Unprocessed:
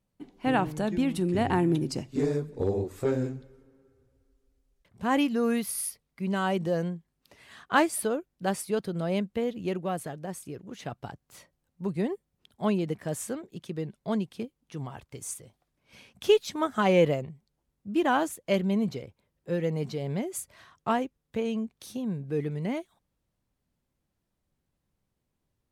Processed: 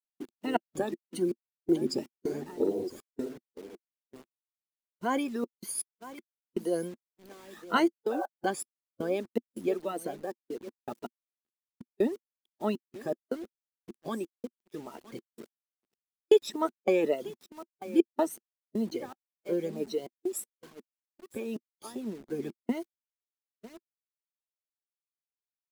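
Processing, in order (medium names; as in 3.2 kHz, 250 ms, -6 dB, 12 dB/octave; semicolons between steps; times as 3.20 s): drifting ripple filter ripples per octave 1.9, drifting +1.8 Hz, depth 17 dB; peaking EQ 2.5 kHz -2.5 dB 0.97 oct; delay 963 ms -17 dB; spectral replace 8.15–8.41 s, 500–1600 Hz after; trance gate "xxx.x.x..xx.x" 80 bpm -60 dB; tone controls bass -15 dB, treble 0 dB; word length cut 8-bit, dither none; small resonant body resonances 240/340 Hz, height 15 dB, ringing for 40 ms; expander -40 dBFS; harmonic-percussive split harmonic -9 dB; trim -4.5 dB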